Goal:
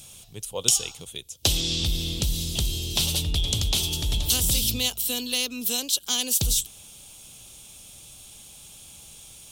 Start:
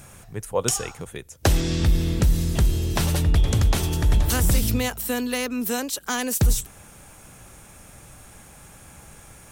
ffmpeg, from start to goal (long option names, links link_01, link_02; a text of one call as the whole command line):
ffmpeg -i in.wav -af "highshelf=frequency=2400:width_type=q:width=3:gain=11,volume=-8dB" out.wav